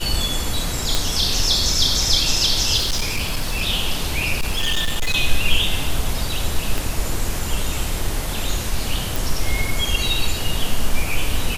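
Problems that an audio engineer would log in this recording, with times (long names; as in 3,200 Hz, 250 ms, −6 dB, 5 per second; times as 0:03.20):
0:00.95: click
0:02.77–0:03.63: clipping −16.5 dBFS
0:04.39–0:05.16: clipping −15.5 dBFS
0:06.78: click
0:09.16: click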